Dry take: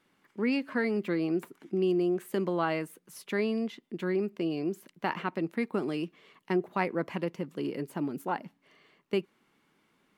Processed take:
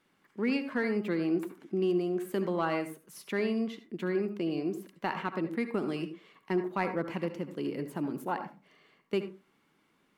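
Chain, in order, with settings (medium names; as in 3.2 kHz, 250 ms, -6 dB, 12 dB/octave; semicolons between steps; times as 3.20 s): in parallel at -7 dB: overload inside the chain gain 21.5 dB; on the sum: reverberation RT60 0.30 s, pre-delay 62 ms, DRR 9 dB; trim -4.5 dB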